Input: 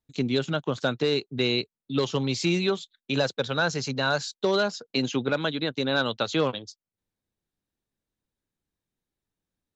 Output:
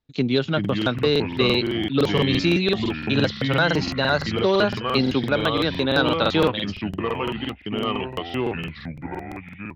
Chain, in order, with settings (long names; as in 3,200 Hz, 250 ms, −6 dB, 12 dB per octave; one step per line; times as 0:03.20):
low-pass filter 4,900 Hz 24 dB per octave
delay with pitch and tempo change per echo 338 ms, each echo −4 semitones, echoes 3, each echo −6 dB
regular buffer underruns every 0.17 s, samples 2,048, repeat, from 0:00.60
level +4.5 dB